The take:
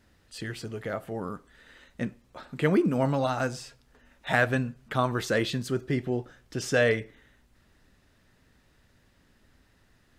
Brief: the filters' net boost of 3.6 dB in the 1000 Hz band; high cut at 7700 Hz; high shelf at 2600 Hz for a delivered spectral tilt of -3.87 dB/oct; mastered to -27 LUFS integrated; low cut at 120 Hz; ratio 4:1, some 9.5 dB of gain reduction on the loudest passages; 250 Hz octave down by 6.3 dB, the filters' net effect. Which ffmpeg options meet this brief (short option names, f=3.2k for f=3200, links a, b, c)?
-af "highpass=120,lowpass=7.7k,equalizer=f=250:t=o:g=-8.5,equalizer=f=1k:t=o:g=4.5,highshelf=f=2.6k:g=5,acompressor=threshold=-28dB:ratio=4,volume=7.5dB"